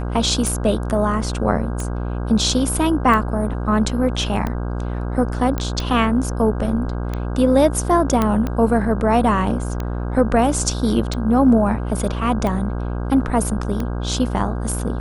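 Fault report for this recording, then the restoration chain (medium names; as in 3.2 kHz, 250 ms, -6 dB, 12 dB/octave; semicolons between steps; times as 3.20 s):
buzz 60 Hz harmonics 27 -24 dBFS
tick 45 rpm
5.58 s: pop -10 dBFS
8.22 s: pop -6 dBFS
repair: de-click; de-hum 60 Hz, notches 27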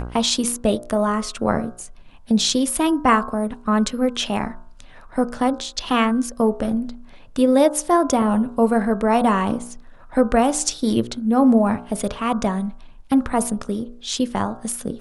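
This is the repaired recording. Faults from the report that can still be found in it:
nothing left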